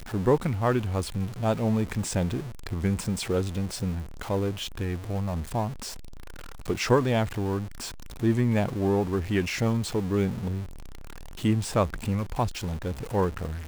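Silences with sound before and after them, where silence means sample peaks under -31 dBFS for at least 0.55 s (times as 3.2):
5.89–6.68
10.63–11.44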